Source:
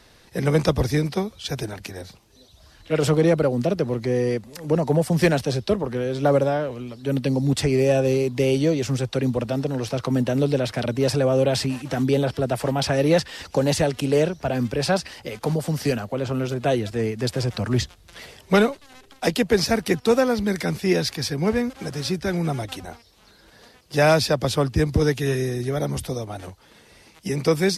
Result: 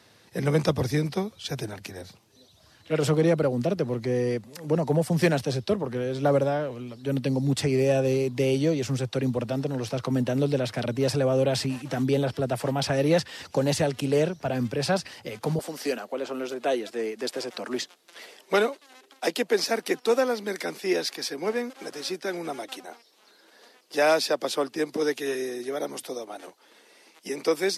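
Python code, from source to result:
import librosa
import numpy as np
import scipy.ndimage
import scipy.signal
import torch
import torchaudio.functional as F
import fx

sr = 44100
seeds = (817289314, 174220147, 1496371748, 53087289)

y = fx.highpass(x, sr, hz=fx.steps((0.0, 90.0), (15.59, 280.0)), slope=24)
y = F.gain(torch.from_numpy(y), -3.5).numpy()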